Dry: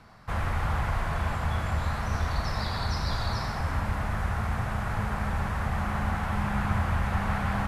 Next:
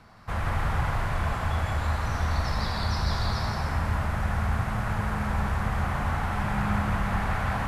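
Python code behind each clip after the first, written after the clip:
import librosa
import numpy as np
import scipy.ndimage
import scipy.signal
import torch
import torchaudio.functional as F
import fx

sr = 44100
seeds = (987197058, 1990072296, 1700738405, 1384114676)

y = x + 10.0 ** (-4.0 / 20.0) * np.pad(x, (int(167 * sr / 1000.0), 0))[:len(x)]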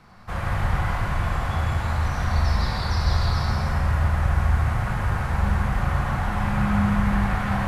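y = fx.room_shoebox(x, sr, seeds[0], volume_m3=340.0, walls='mixed', distance_m=0.95)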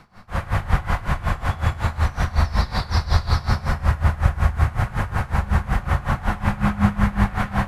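y = x * 10.0 ** (-19 * (0.5 - 0.5 * np.cos(2.0 * np.pi * 5.4 * np.arange(len(x)) / sr)) / 20.0)
y = F.gain(torch.from_numpy(y), 6.5).numpy()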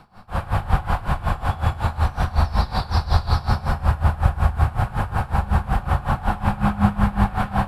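y = fx.graphic_eq_31(x, sr, hz=(800, 2000, 6300), db=(6, -9, -9))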